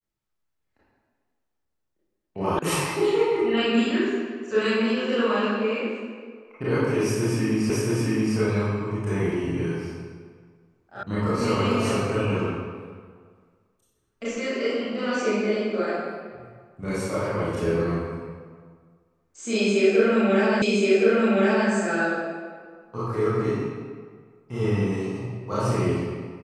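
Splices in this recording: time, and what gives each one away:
0:02.59: cut off before it has died away
0:07.70: the same again, the last 0.67 s
0:11.03: cut off before it has died away
0:20.62: the same again, the last 1.07 s

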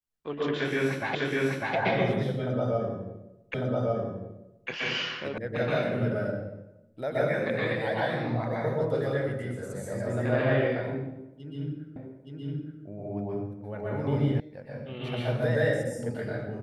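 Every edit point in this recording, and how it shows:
0:01.15: the same again, the last 0.6 s
0:03.54: the same again, the last 1.15 s
0:05.38: cut off before it has died away
0:11.96: the same again, the last 0.87 s
0:14.40: cut off before it has died away

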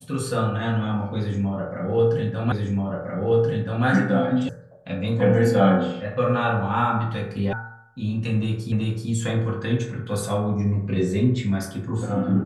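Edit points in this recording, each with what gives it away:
0:02.52: the same again, the last 1.33 s
0:04.49: cut off before it has died away
0:07.53: cut off before it has died away
0:08.72: the same again, the last 0.38 s

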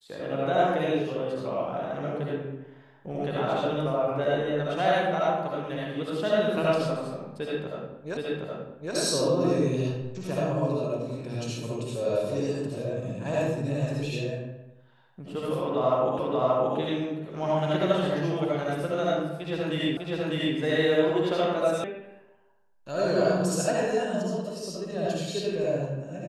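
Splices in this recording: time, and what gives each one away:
0:08.17: the same again, the last 0.77 s
0:16.19: the same again, the last 0.58 s
0:19.97: the same again, the last 0.6 s
0:21.84: cut off before it has died away

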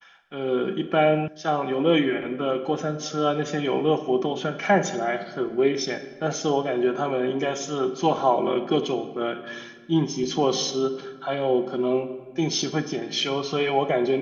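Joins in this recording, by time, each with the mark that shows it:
0:01.28: cut off before it has died away

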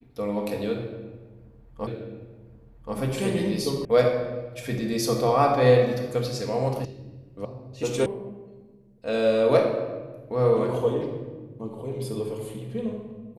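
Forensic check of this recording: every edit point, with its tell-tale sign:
0:01.87: the same again, the last 1.08 s
0:03.85: cut off before it has died away
0:06.85: cut off before it has died away
0:07.45: cut off before it has died away
0:08.06: cut off before it has died away

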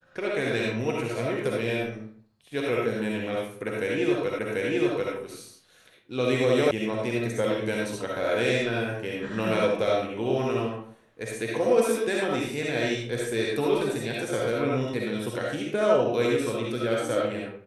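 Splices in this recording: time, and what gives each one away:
0:04.39: the same again, the last 0.74 s
0:06.71: cut off before it has died away

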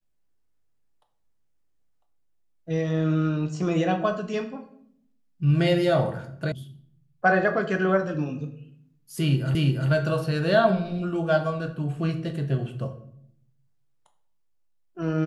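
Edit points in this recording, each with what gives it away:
0:06.52: cut off before it has died away
0:09.55: the same again, the last 0.35 s

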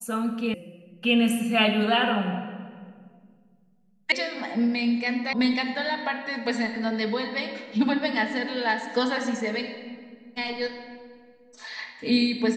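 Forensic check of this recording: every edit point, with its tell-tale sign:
0:00.54: cut off before it has died away
0:04.12: cut off before it has died away
0:05.33: cut off before it has died away

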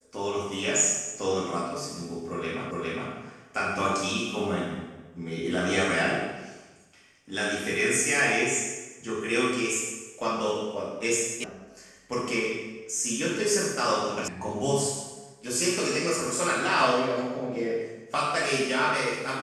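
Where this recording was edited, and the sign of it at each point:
0:02.71: the same again, the last 0.41 s
0:11.44: cut off before it has died away
0:14.28: cut off before it has died away

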